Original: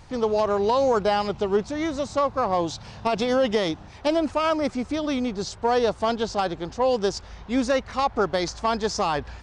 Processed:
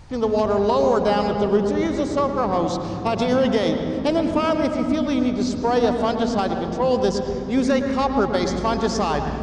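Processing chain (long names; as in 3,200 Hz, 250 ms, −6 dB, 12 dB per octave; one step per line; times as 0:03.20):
low-shelf EQ 300 Hz +5 dB
on a send: convolution reverb RT60 3.4 s, pre-delay 108 ms, DRR 5.5 dB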